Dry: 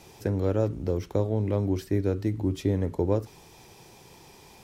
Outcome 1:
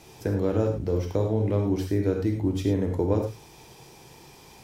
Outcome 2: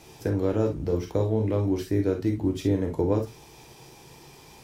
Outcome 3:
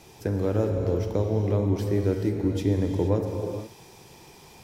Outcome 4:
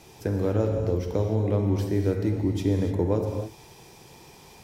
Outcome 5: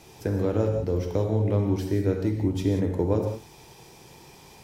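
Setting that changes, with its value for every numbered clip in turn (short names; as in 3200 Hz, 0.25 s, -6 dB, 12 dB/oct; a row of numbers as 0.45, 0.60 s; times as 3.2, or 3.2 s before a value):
non-linear reverb, gate: 130, 80, 500, 320, 210 ms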